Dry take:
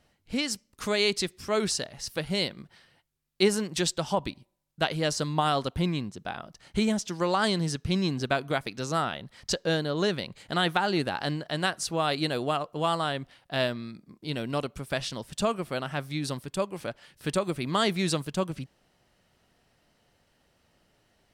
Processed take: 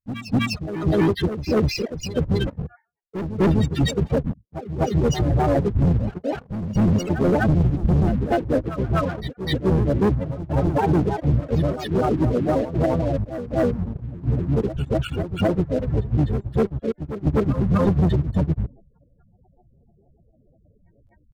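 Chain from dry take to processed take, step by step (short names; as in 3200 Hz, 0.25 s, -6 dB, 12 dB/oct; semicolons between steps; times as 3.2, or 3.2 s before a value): trilling pitch shifter -4.5 st, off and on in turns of 77 ms; dynamic EQ 1000 Hz, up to -6 dB, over -42 dBFS, Q 0.93; in parallel at -7 dB: crossover distortion -40 dBFS; on the sum: high shelf 6100 Hz -8 dB; loudest bins only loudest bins 4; spectral noise reduction 8 dB; sample leveller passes 3; harmoniser -12 st -2 dB, -3 st -10 dB, +3 st -12 dB; gate with hold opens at -39 dBFS; reverse; upward compressor, threshold -20 dBFS; reverse; overloaded stage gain 13.5 dB; reverse echo 0.251 s -10.5 dB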